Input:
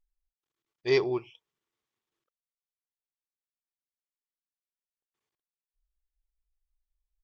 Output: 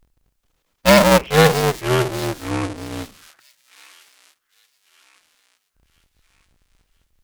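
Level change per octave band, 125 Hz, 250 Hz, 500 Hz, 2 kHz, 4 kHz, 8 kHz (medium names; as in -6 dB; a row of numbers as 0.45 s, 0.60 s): +24.0 dB, +18.5 dB, +14.5 dB, +19.0 dB, +20.0 dB, no reading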